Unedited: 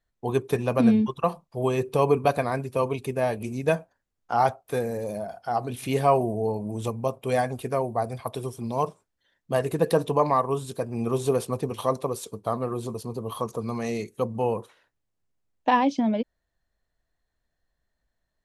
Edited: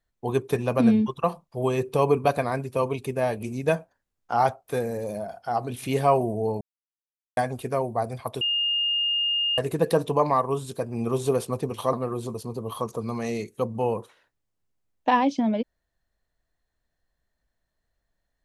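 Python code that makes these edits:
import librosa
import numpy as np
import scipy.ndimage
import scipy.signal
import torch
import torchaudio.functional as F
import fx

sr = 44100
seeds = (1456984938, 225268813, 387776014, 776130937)

y = fx.edit(x, sr, fx.silence(start_s=6.61, length_s=0.76),
    fx.bleep(start_s=8.41, length_s=1.17, hz=2830.0, db=-21.5),
    fx.cut(start_s=11.93, length_s=0.6), tone=tone)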